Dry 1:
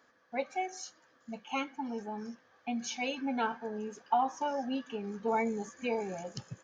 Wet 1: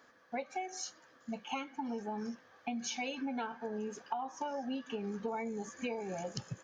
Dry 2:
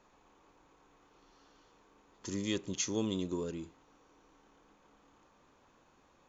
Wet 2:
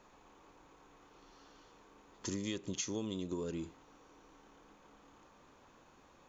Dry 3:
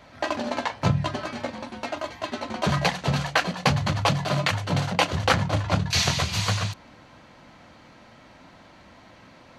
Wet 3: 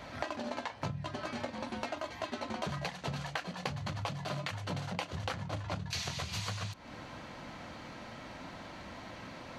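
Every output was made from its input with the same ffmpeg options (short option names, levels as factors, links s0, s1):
-af "acompressor=threshold=0.0126:ratio=12,volume=1.5"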